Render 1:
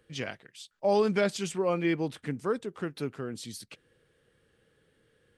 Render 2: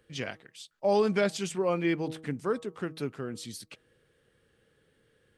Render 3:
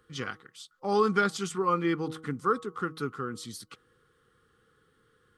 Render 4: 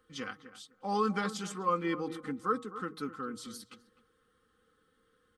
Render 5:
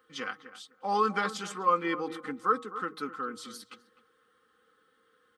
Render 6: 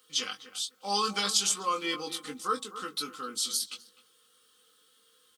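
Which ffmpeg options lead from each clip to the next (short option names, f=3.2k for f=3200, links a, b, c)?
-af "bandreject=f=159.3:t=h:w=4,bandreject=f=318.6:t=h:w=4,bandreject=f=477.9:t=h:w=4,bandreject=f=637.2:t=h:w=4,bandreject=f=796.5:t=h:w=4,bandreject=f=955.8:t=h:w=4,bandreject=f=1.1151k:t=h:w=4,bandreject=f=1.2744k:t=h:w=4"
-af "superequalizer=8b=0.251:10b=3.55:12b=0.562"
-filter_complex "[0:a]bandreject=f=60:t=h:w=6,bandreject=f=120:t=h:w=6,aecho=1:1:3.9:0.61,asplit=2[a][b];[b]adelay=255,lowpass=f=1.4k:p=1,volume=-13dB,asplit=2[c][d];[d]adelay=255,lowpass=f=1.4k:p=1,volume=0.19[e];[a][c][e]amix=inputs=3:normalize=0,volume=-5.5dB"
-af "highpass=f=670:p=1,equalizer=f=10k:w=0.31:g=-7.5,volume=7.5dB"
-filter_complex "[0:a]asplit=2[a][b];[b]adelay=20,volume=-5dB[c];[a][c]amix=inputs=2:normalize=0,aexciter=amount=8.5:drive=4.8:freq=2.7k,volume=-5dB" -ar 48000 -c:a libopus -b:a 128k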